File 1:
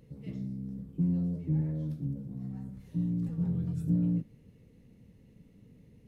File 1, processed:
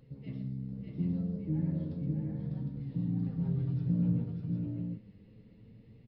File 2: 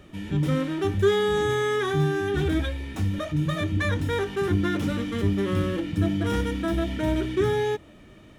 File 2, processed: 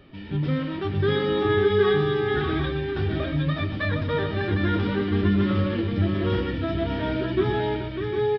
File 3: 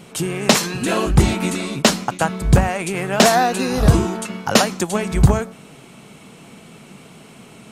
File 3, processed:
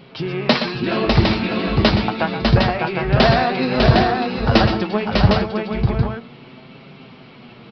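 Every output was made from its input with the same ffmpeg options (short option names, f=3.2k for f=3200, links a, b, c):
-filter_complex "[0:a]asplit=2[a][b];[b]aecho=0:1:121|600|757:0.335|0.631|0.562[c];[a][c]amix=inputs=2:normalize=0,flanger=delay=7.4:depth=2.4:regen=45:speed=0.29:shape=triangular,aresample=11025,aresample=44100,volume=2.5dB"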